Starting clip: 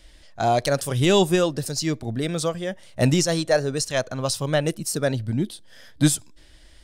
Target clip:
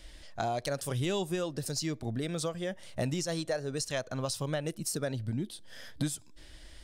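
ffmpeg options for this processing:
-af "acompressor=threshold=0.0251:ratio=4"

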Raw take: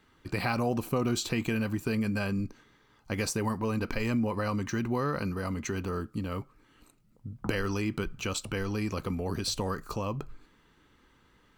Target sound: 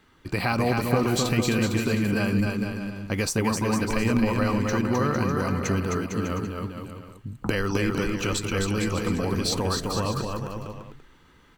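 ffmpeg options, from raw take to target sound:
-af "aecho=1:1:260|455|601.2|710.9|793.2:0.631|0.398|0.251|0.158|0.1,volume=1.68"

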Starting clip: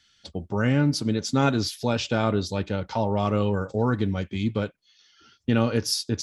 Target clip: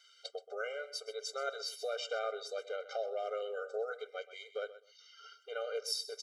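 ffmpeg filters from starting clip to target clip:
-af "acompressor=threshold=0.00891:ratio=2,aecho=1:1:127|254:0.178|0.032,afftfilt=real='re*eq(mod(floor(b*sr/1024/400),2),1)':imag='im*eq(mod(floor(b*sr/1024/400),2),1)':win_size=1024:overlap=0.75,volume=1.33"

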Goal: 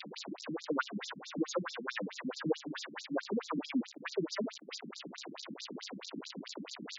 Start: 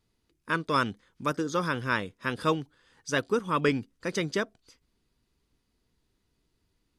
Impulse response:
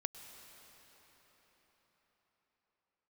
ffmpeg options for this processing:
-filter_complex "[0:a]aeval=exprs='val(0)+0.5*0.0531*sgn(val(0))':c=same,afftfilt=real='re*between(b*sr/4096,140,8500)':imag='im*between(b*sr/4096,140,8500)':win_size=4096:overlap=0.75,bandreject=f=60:t=h:w=6,bandreject=f=120:t=h:w=6,bandreject=f=180:t=h:w=6,acrossover=split=340|700|2400[s0][s1][s2][s3];[s3]alimiter=level_in=1.88:limit=0.0631:level=0:latency=1:release=127,volume=0.531[s4];[s0][s1][s2][s4]amix=inputs=4:normalize=0,afftfilt=real='re*between(b*sr/1024,210*pow(5400/210,0.5+0.5*sin(2*PI*4.6*pts/sr))/1.41,210*pow(5400/210,0.5+0.5*sin(2*PI*4.6*pts/sr))*1.41)':imag='im*between(b*sr/1024,210*pow(5400/210,0.5+0.5*sin(2*PI*4.6*pts/sr))/1.41,210*pow(5400/210,0.5+0.5*sin(2*PI*4.6*pts/sr))*1.41)':win_size=1024:overlap=0.75,volume=0.75"

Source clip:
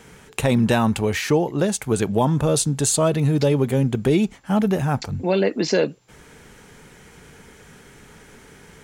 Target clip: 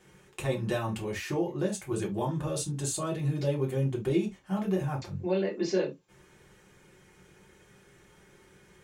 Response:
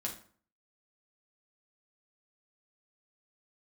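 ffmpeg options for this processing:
-filter_complex "[1:a]atrim=start_sample=2205,atrim=end_sample=6174,asetrate=74970,aresample=44100[s0];[0:a][s0]afir=irnorm=-1:irlink=0,volume=0.398"

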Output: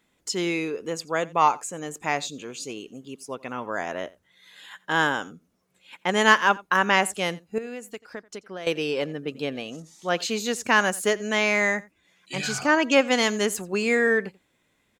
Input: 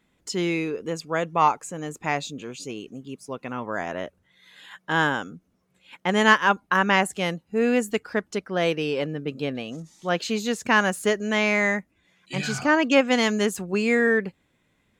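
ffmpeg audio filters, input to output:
-filter_complex "[0:a]bass=f=250:g=-6,treble=f=4000:g=4,asettb=1/sr,asplit=3[s0][s1][s2];[s0]atrim=end=7.584[s3];[s1]atrim=start=7.58:end=8.67,asetpts=PTS-STARTPTS,afade=t=in:d=0.004:c=qsin,afade=t=out:st=1.086:d=0.004:c=qsin,acompressor=threshold=0.0158:ratio=4[s4];[s2]atrim=start=8.666[s5];[s3][s4]acrossfade=d=0.004:c1=hsin:c2=qsin[s6];[s6][s5]acrossfade=d=0.004:c1=qsin:c2=hsin,aecho=1:1:87:0.0794"

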